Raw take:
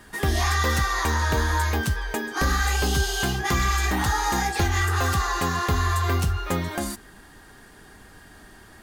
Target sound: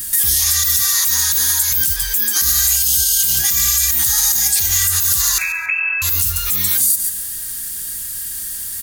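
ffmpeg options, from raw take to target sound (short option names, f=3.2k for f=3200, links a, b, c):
-filter_complex "[0:a]asettb=1/sr,asplit=3[a][b][c];[a]atrim=end=5.384[d];[b]atrim=start=5.38:end=6.02,asetpts=PTS-STARTPTS,afade=t=in:d=0.004:c=qsin,afade=t=out:st=0.636:d=0.004:c=qsin,lowpass=f=2.3k:t=q:w=0.5098,lowpass=f=2.3k:t=q:w=0.6013,lowpass=f=2.3k:t=q:w=0.9,lowpass=f=2.3k:t=q:w=2.563,afreqshift=-2700[e];[c]atrim=start=6.016[f];[d][e]acrossfade=d=0.004:c1=hsin:c2=qsin[g];[g][f]acrossfade=d=0.004:c1=qsin:c2=hsin,aecho=1:1:139|278|417:0.158|0.0412|0.0107,acrossover=split=310[h][i];[h]acompressor=mode=upward:threshold=-42dB:ratio=2.5[j];[i]crystalizer=i=5:c=0[k];[j][k]amix=inputs=2:normalize=0,acompressor=threshold=-22dB:ratio=4,aemphasis=mode=production:type=75kf,asettb=1/sr,asplit=3[l][m][n];[l]atrim=end=0.774[o];[m]atrim=start=0.77:end=1.72,asetpts=PTS-STARTPTS,afade=t=in:d=0.004:c=qsin,afade=t=out:st=0.946:d=0.004:c=qsin,highpass=110[p];[n]atrim=start=1.716[q];[o][p]acrossfade=d=0.004:c1=hsin:c2=qsin[r];[r][q]acrossfade=d=0.004:c1=qsin:c2=hsin,equalizer=f=600:w=0.52:g=-12,alimiter=level_in=6.5dB:limit=-1dB:release=50:level=0:latency=1,volume=-3.5dB"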